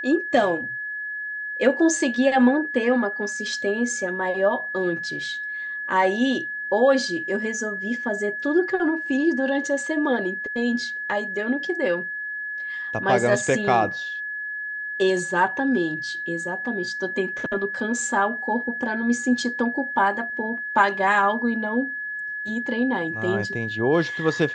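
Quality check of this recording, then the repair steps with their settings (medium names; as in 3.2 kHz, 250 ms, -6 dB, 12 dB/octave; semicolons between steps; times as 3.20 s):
whine 1.7 kHz -28 dBFS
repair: band-stop 1.7 kHz, Q 30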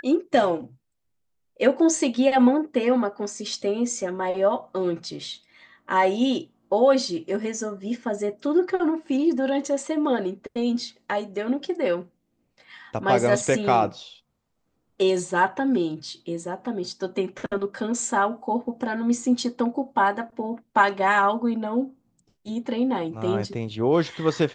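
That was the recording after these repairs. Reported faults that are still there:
nothing left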